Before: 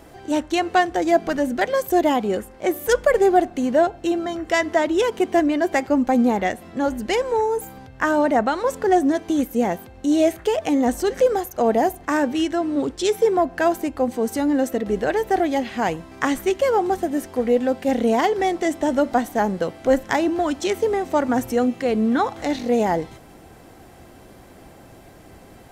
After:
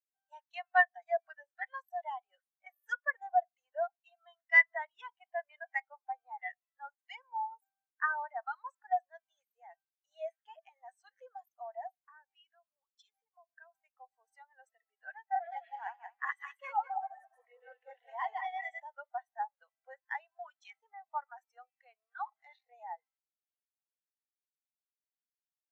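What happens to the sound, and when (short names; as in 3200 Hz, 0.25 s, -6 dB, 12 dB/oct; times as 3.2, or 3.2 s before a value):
11.99–13.75 compressor 8:1, threshold -24 dBFS
15.25–18.8 regenerating reverse delay 0.102 s, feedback 59%, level -0.5 dB
whole clip: Bessel high-pass 1300 Hz, order 6; high shelf 9600 Hz -5.5 dB; spectral expander 2.5:1; gain -3.5 dB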